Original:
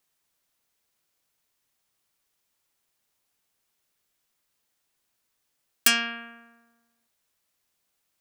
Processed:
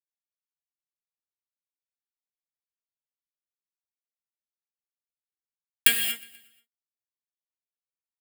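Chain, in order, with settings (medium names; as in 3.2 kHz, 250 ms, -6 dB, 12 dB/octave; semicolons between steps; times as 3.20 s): high-pass 180 Hz 24 dB/octave; tilt shelf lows -4 dB, about 780 Hz; in parallel at -1 dB: compression 5:1, threshold -32 dBFS, peak gain reduction 18.5 dB; on the sum: small samples zeroed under -13 dBFS; static phaser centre 2.5 kHz, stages 4; feedback delay 121 ms, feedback 56%, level -21.5 dB; gated-style reverb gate 260 ms flat, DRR 4 dB; trim -1 dB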